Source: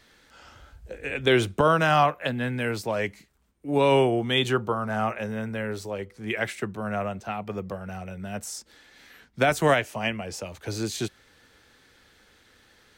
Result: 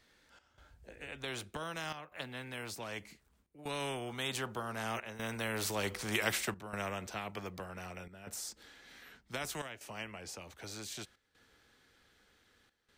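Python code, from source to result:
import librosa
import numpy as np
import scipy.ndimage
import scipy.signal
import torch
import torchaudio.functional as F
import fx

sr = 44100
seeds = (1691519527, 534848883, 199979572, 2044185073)

y = fx.doppler_pass(x, sr, speed_mps=9, closest_m=2.1, pass_at_s=5.96)
y = fx.step_gate(y, sr, bpm=156, pattern='xxxx..xxxxxxxxxx', floor_db=-12.0, edge_ms=4.5)
y = fx.spectral_comp(y, sr, ratio=2.0)
y = y * librosa.db_to_amplitude(1.0)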